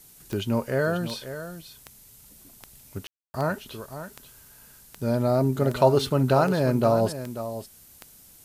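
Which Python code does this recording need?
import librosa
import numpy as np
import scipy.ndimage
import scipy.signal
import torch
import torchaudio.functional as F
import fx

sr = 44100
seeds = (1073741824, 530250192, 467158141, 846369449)

y = fx.fix_declick_ar(x, sr, threshold=10.0)
y = fx.fix_ambience(y, sr, seeds[0], print_start_s=7.85, print_end_s=8.35, start_s=3.07, end_s=3.34)
y = fx.noise_reduce(y, sr, print_start_s=7.85, print_end_s=8.35, reduce_db=18.0)
y = fx.fix_echo_inverse(y, sr, delay_ms=539, level_db=-11.5)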